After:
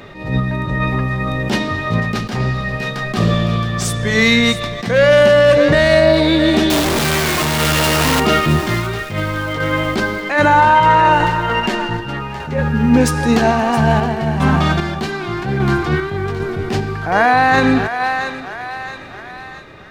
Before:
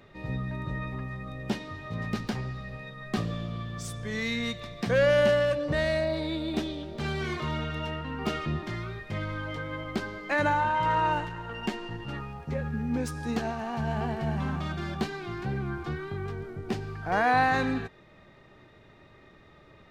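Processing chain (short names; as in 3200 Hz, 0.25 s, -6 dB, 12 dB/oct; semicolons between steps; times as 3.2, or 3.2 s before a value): 6.7–8.2 infinite clipping; on a send: thinning echo 0.669 s, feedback 54%, high-pass 670 Hz, level -12.5 dB; on the sum: random-step tremolo 2.5 Hz; low shelf 120 Hz -4 dB; de-hum 70.96 Hz, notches 10; maximiser +21 dB; attack slew limiter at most 100 dB/s; gain -1 dB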